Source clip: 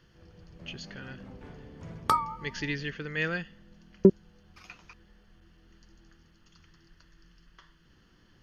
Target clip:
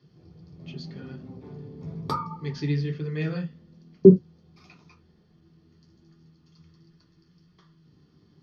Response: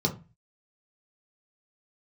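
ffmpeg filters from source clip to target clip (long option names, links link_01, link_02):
-filter_complex "[0:a]flanger=delay=4.9:depth=8.7:regen=-54:speed=1.3:shape=sinusoidal[link_01];[1:a]atrim=start_sample=2205,afade=type=out:start_time=0.13:duration=0.01,atrim=end_sample=6174[link_02];[link_01][link_02]afir=irnorm=-1:irlink=0,volume=-8.5dB"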